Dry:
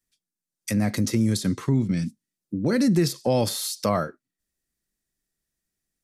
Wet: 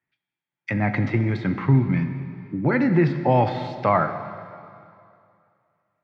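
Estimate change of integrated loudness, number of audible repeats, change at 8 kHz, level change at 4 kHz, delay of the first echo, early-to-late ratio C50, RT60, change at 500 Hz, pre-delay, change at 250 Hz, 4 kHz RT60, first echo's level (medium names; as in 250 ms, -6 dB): +2.0 dB, no echo, under -30 dB, -11.5 dB, no echo, 9.0 dB, 2.4 s, +2.5 dB, 4 ms, +0.5 dB, 2.2 s, no echo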